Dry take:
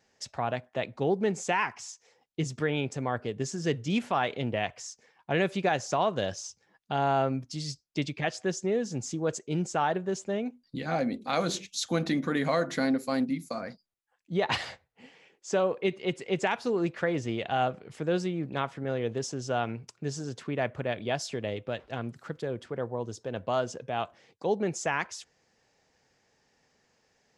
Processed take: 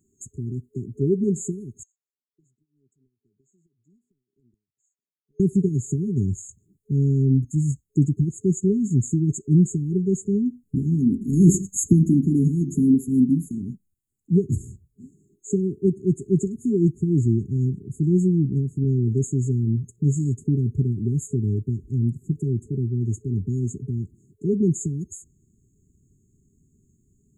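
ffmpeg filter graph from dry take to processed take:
-filter_complex "[0:a]asettb=1/sr,asplit=3[s0][s1][s2];[s0]atrim=end=1.834[s3];[s1]atrim=start=1.83:end=5.4,asetpts=PTS-STARTPTS,afade=t=in:d=0.004:c=qsin,afade=t=out:st=3.566:d=0.004:c=qsin,bandpass=f=1800:t=q:w=15,acompressor=threshold=0.00141:ratio=6:attack=3.2:release=140:knee=1:detection=peak[s4];[s2]atrim=start=5.396[s5];[s3][s4]acrossfade=d=0.004:c1=hsin:c2=qsin[s6];[s6][s5]acrossfade=d=0.004:c1=qsin:c2=hsin,asettb=1/sr,asplit=3[s7][s8][s9];[s7]atrim=end=11.214[s10];[s8]atrim=start=11.21:end=11.93,asetpts=PTS-STARTPTS,afade=t=in:d=0.004:c=qsin,afade=t=out:st=0.716:d=0.004:c=qsin,equalizer=f=3600:t=o:w=0.92:g=6.5,acontrast=59[s11];[s9]atrim=start=11.926[s12];[s10][s11]acrossfade=d=0.004:c1=hsin:c2=qsin[s13];[s13][s12]acrossfade=d=0.004:c1=qsin:c2=hsin,afftfilt=real='re*(1-between(b*sr/4096,420,6500))':imag='im*(1-between(b*sr/4096,420,6500))':win_size=4096:overlap=0.75,asubboost=boost=4:cutoff=200,volume=2.37"

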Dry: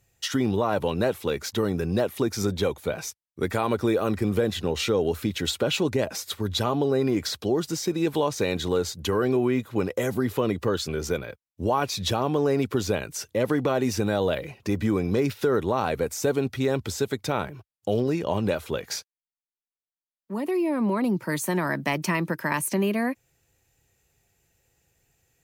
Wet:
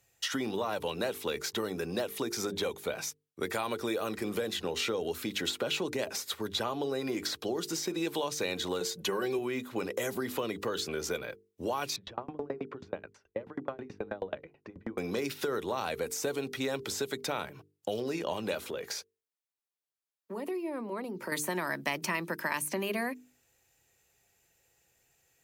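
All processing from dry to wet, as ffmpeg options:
-filter_complex "[0:a]asettb=1/sr,asplit=3[s0][s1][s2];[s0]atrim=end=8.804[s3];[s1]atrim=start=8.8:end=9.39,asetpts=PTS-STARTPTS,afade=t=in:d=0.004:c=qsin,afade=t=out:st=0.586:d=0.004:c=qsin,highpass=92,bandreject=f=1300:w=15,aecho=1:1:5.4:0.7,atrim=end_sample=26019[s4];[s2]atrim=start=9.386[s5];[s3][s4]acrossfade=d=0.004:c1=hsin:c2=qsin[s6];[s6][s5]acrossfade=d=0.004:c1=qsin:c2=hsin,asettb=1/sr,asplit=3[s7][s8][s9];[s7]atrim=end=11.964[s10];[s8]atrim=start=11.96:end=14.98,asetpts=PTS-STARTPTS,afade=t=in:d=0.004:c=qsin,afade=t=out:st=3.016:d=0.004:c=qsin,lowpass=1700,aeval=exprs='val(0)*pow(10,-37*if(lt(mod(9.3*n/s,1),2*abs(9.3)/1000),1-mod(9.3*n/s,1)/(2*abs(9.3)/1000),(mod(9.3*n/s,1)-2*abs(9.3)/1000)/(1-2*abs(9.3)/1000))/20)':c=same[s11];[s9]atrim=start=14.976[s12];[s10][s11]acrossfade=d=0.004:c1=hsin:c2=qsin[s13];[s13][s12]acrossfade=d=0.004:c1=qsin:c2=hsin,asettb=1/sr,asplit=3[s14][s15][s16];[s14]atrim=end=18.574[s17];[s15]atrim=start=18.57:end=21.32,asetpts=PTS-STARTPTS,afade=t=in:d=0.004:c=qsin,afade=t=out:st=2.746:d=0.004:c=qsin,acompressor=threshold=0.0282:ratio=10:attack=3.2:release=140:knee=1:detection=peak,equalizer=f=430:w=2:g=6[s18];[s16]atrim=start=21.316[s19];[s17][s18]acrossfade=d=0.004:c1=hsin:c2=qsin[s20];[s20][s19]acrossfade=d=0.004:c1=qsin:c2=hsin,lowshelf=f=230:g=-10.5,bandreject=f=50:t=h:w=6,bandreject=f=100:t=h:w=6,bandreject=f=150:t=h:w=6,bandreject=f=200:t=h:w=6,bandreject=f=250:t=h:w=6,bandreject=f=300:t=h:w=6,bandreject=f=350:t=h:w=6,bandreject=f=400:t=h:w=6,bandreject=f=450:t=h:w=6,acrossover=split=180|2500[s21][s22][s23];[s21]acompressor=threshold=0.00316:ratio=4[s24];[s22]acompressor=threshold=0.0282:ratio=4[s25];[s23]acompressor=threshold=0.02:ratio=4[s26];[s24][s25][s26]amix=inputs=3:normalize=0"

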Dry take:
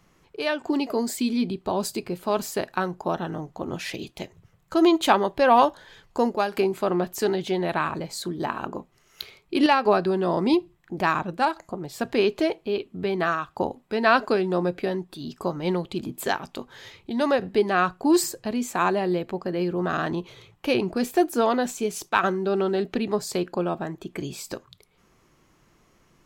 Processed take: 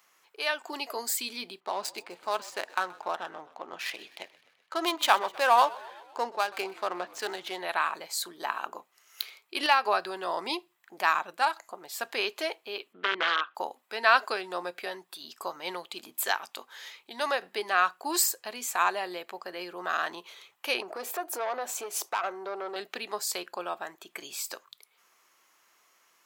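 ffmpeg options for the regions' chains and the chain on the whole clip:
-filter_complex "[0:a]asettb=1/sr,asplit=3[s0][s1][s2];[s0]atrim=end=1.604[s3];[s1]atrim=start=1.6:end=7.59,asetpts=PTS-STARTPTS,afade=t=in:d=0.004:c=qsin,afade=t=out:st=5.986:d=0.004:c=qsin,adynamicsmooth=sensitivity=5:basefreq=2500,asplit=7[s4][s5][s6][s7][s8][s9][s10];[s5]adelay=127,afreqshift=-47,volume=0.0944[s11];[s6]adelay=254,afreqshift=-94,volume=0.0603[s12];[s7]adelay=381,afreqshift=-141,volume=0.0385[s13];[s8]adelay=508,afreqshift=-188,volume=0.0248[s14];[s9]adelay=635,afreqshift=-235,volume=0.0158[s15];[s10]adelay=762,afreqshift=-282,volume=0.0101[s16];[s4][s11][s12][s13][s14][s15][s16]amix=inputs=7:normalize=0,atrim=end_sample=264159[s17];[s2]atrim=start=7.586[s18];[s3][s17]acrossfade=d=0.004:c1=hsin:c2=qsin[s19];[s19][s18]acrossfade=d=0.004:c1=qsin:c2=hsin,asettb=1/sr,asplit=3[s20][s21][s22];[s20]atrim=end=12.934[s23];[s21]atrim=start=12.93:end=13.55,asetpts=PTS-STARTPTS,afade=t=in:d=0.004:c=qsin,afade=t=out:st=0.616:d=0.004:c=qsin,aeval=exprs='(mod(8.41*val(0)+1,2)-1)/8.41':c=same,highpass=200,equalizer=f=210:t=q:w=4:g=8,equalizer=f=330:t=q:w=4:g=5,equalizer=f=490:t=q:w=4:g=7,equalizer=f=740:t=q:w=4:g=-4,equalizer=f=1500:t=q:w=4:g=8,equalizer=f=3100:t=q:w=4:g=5,lowpass=f=3300:w=0.5412,lowpass=f=3300:w=1.3066[s24];[s22]atrim=start=13.546[s25];[s23][s24]acrossfade=d=0.004:c1=hsin:c2=qsin[s26];[s26][s25]acrossfade=d=0.004:c1=qsin:c2=hsin,asettb=1/sr,asplit=3[s27][s28][s29];[s27]atrim=end=20.824[s30];[s28]atrim=start=20.82:end=22.76,asetpts=PTS-STARTPTS,afade=t=in:d=0.004:c=qsin,afade=t=out:st=1.936:d=0.004:c=qsin,equalizer=f=580:w=0.58:g=14.5,acompressor=threshold=0.0562:ratio=2.5:attack=3.2:release=140:knee=1:detection=peak,aeval=exprs='(tanh(7.94*val(0)+0.25)-tanh(0.25))/7.94':c=same[s31];[s29]atrim=start=22.756[s32];[s30][s31]acrossfade=d=0.004:c1=hsin:c2=qsin[s33];[s33][s32]acrossfade=d=0.004:c1=qsin:c2=hsin,highpass=900,highshelf=f=12000:g=12"

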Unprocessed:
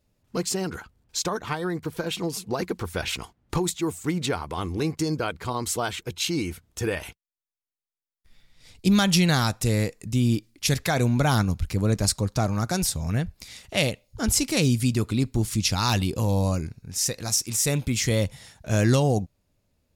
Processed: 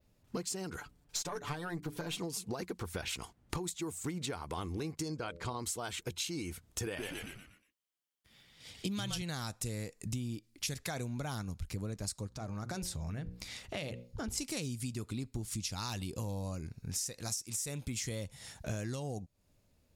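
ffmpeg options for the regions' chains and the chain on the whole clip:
-filter_complex "[0:a]asettb=1/sr,asplit=3[s0][s1][s2];[s0]atrim=end=0.774[s3];[s1]atrim=start=0.77:end=2.19,asetpts=PTS-STARTPTS,afade=t=in:d=0.004:c=qsin,afade=t=out:st=1.416:d=0.004:c=qsin,bandreject=f=60:t=h:w=6,bandreject=f=120:t=h:w=6,bandreject=f=180:t=h:w=6,bandreject=f=240:t=h:w=6,bandreject=f=300:t=h:w=6,bandreject=f=360:t=h:w=6,bandreject=f=420:t=h:w=6,aecho=1:1:6.9:0.69,atrim=end_sample=62622,aeval=exprs='(tanh(7.94*val(0)+0.45)-tanh(0.45))/7.94':c=same[s4];[s2]atrim=start=2.186[s5];[s3][s4]acrossfade=d=0.004:c1=hsin:c2=qsin[s6];[s6][s5]acrossfade=d=0.004:c1=qsin:c2=hsin,asettb=1/sr,asplit=3[s7][s8][s9];[s7]atrim=end=5.084[s10];[s8]atrim=start=5.08:end=5.59,asetpts=PTS-STARTPTS,afade=t=in:d=0.004:c=qsin,afade=t=out:st=0.506:d=0.004:c=qsin,lowpass=8200,bandreject=f=85.44:t=h:w=4,bandreject=f=170.88:t=h:w=4,bandreject=f=256.32:t=h:w=4,bandreject=f=341.76:t=h:w=4,bandreject=f=427.2:t=h:w=4,bandreject=f=512.64:t=h:w=4,bandreject=f=598.08:t=h:w=4[s11];[s9]atrim=start=5.586[s12];[s10][s11]acrossfade=d=0.004:c1=hsin:c2=qsin[s13];[s13][s12]acrossfade=d=0.004:c1=qsin:c2=hsin,asettb=1/sr,asplit=3[s14][s15][s16];[s14]atrim=end=6.864[s17];[s15]atrim=start=6.86:end=9.22,asetpts=PTS-STARTPTS,afade=t=in:d=0.004:c=qsin,afade=t=out:st=2.356:d=0.004:c=qsin,highpass=100,equalizer=f=3100:w=7.3:g=8,asplit=6[s18][s19][s20][s21][s22][s23];[s19]adelay=119,afreqshift=-79,volume=0.562[s24];[s20]adelay=238,afreqshift=-158,volume=0.224[s25];[s21]adelay=357,afreqshift=-237,volume=0.0902[s26];[s22]adelay=476,afreqshift=-316,volume=0.0359[s27];[s23]adelay=595,afreqshift=-395,volume=0.0145[s28];[s18][s24][s25][s26][s27][s28]amix=inputs=6:normalize=0,atrim=end_sample=104076[s29];[s16]atrim=start=9.216[s30];[s17][s29]acrossfade=d=0.004:c1=hsin:c2=qsin[s31];[s31][s30]acrossfade=d=0.004:c1=qsin:c2=hsin,asettb=1/sr,asplit=3[s32][s33][s34];[s32]atrim=end=12.274[s35];[s33]atrim=start=12.27:end=14.38,asetpts=PTS-STARTPTS,afade=t=in:d=0.004:c=qsin,afade=t=out:st=2.106:d=0.004:c=qsin,highshelf=f=5500:g=-8.5,bandreject=f=60:t=h:w=6,bandreject=f=120:t=h:w=6,bandreject=f=180:t=h:w=6,bandreject=f=240:t=h:w=6,bandreject=f=300:t=h:w=6,bandreject=f=360:t=h:w=6,bandreject=f=420:t=h:w=6,bandreject=f=480:t=h:w=6,bandreject=f=540:t=h:w=6,acompressor=threshold=0.0158:ratio=2.5:attack=3.2:release=140:knee=1:detection=peak[s36];[s34]atrim=start=14.376[s37];[s35][s36]acrossfade=d=0.004:c1=hsin:c2=qsin[s38];[s38][s37]acrossfade=d=0.004:c1=qsin:c2=hsin,adynamicequalizer=threshold=0.01:dfrequency=8300:dqfactor=0.88:tfrequency=8300:tqfactor=0.88:attack=5:release=100:ratio=0.375:range=3:mode=boostabove:tftype=bell,acompressor=threshold=0.0178:ratio=12"

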